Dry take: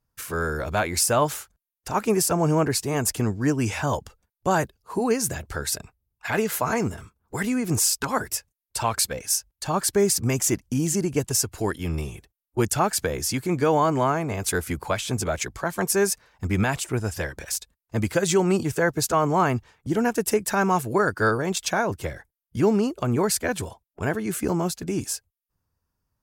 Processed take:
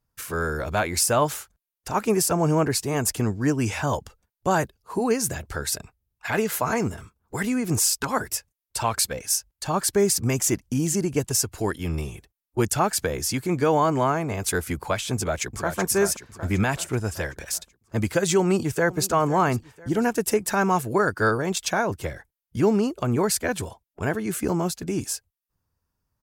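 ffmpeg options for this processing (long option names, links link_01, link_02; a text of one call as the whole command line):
ffmpeg -i in.wav -filter_complex "[0:a]asplit=2[link_01][link_02];[link_02]afade=type=in:start_time=15.15:duration=0.01,afade=type=out:start_time=15.78:duration=0.01,aecho=0:1:380|760|1140|1520|1900|2280|2660:0.421697|0.231933|0.127563|0.0701598|0.0385879|0.0212233|0.0116728[link_03];[link_01][link_03]amix=inputs=2:normalize=0,asplit=2[link_04][link_05];[link_05]afade=type=in:start_time=18.4:duration=0.01,afade=type=out:start_time=19.06:duration=0.01,aecho=0:1:500|1000|1500|2000:0.133352|0.0600085|0.0270038|0.0121517[link_06];[link_04][link_06]amix=inputs=2:normalize=0" out.wav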